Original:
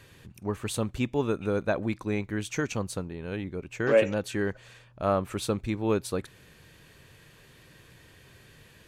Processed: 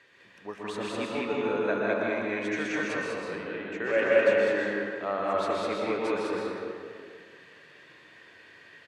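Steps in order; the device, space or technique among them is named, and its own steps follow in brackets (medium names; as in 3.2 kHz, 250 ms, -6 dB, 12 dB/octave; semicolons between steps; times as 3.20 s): station announcement (band-pass 330–4900 Hz; peaking EQ 1.9 kHz +8 dB 0.4 oct; loudspeakers at several distances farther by 54 m -5 dB, 69 m -1 dB; reverberation RT60 2.1 s, pre-delay 112 ms, DRR -2.5 dB); trim -5.5 dB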